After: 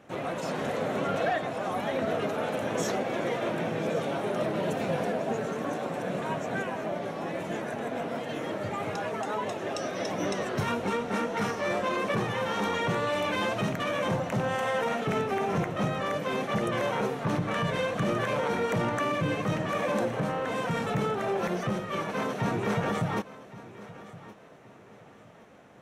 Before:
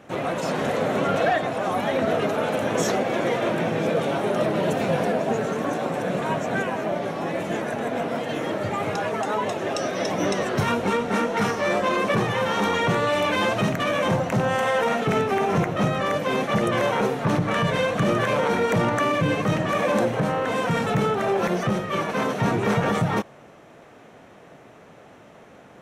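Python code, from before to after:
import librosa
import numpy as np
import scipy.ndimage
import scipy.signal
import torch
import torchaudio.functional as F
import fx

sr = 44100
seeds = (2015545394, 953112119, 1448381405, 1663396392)

y = fx.echo_feedback(x, sr, ms=1118, feedback_pct=30, wet_db=-17.5)
y = F.gain(torch.from_numpy(y), -6.5).numpy()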